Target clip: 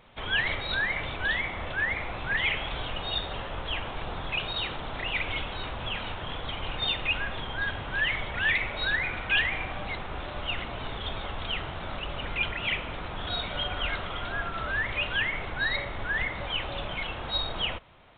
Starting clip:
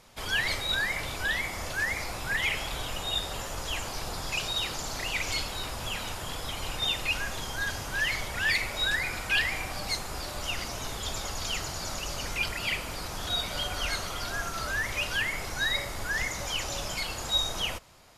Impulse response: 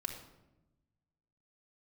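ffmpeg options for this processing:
-af "aresample=8000,aresample=44100,volume=1.5dB"

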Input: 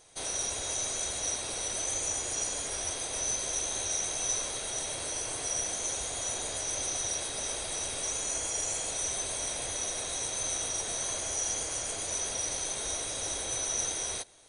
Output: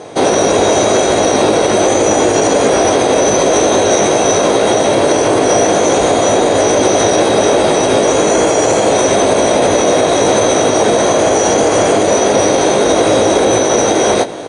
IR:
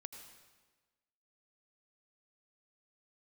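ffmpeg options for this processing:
-filter_complex "[0:a]highpass=240,lowpass=7700,tiltshelf=frequency=850:gain=9,areverse,acompressor=mode=upward:threshold=-48dB:ratio=2.5,areverse,highshelf=frequency=4200:gain=-11,asplit=2[link_01][link_02];[link_02]adelay=19,volume=-5.5dB[link_03];[link_01][link_03]amix=inputs=2:normalize=0,alimiter=level_in=32dB:limit=-1dB:release=50:level=0:latency=1,volume=-1dB"

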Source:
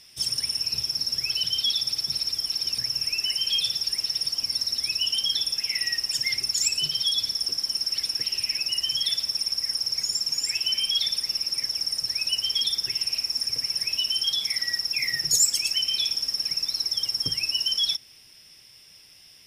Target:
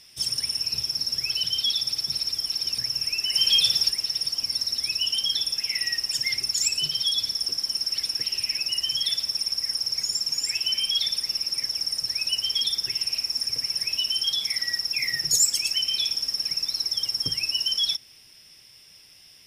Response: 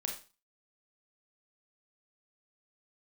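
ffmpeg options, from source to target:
-filter_complex "[0:a]asplit=3[link_01][link_02][link_03];[link_01]afade=type=out:start_time=3.33:duration=0.02[link_04];[link_02]acontrast=31,afade=type=in:start_time=3.33:duration=0.02,afade=type=out:start_time=3.89:duration=0.02[link_05];[link_03]afade=type=in:start_time=3.89:duration=0.02[link_06];[link_04][link_05][link_06]amix=inputs=3:normalize=0"

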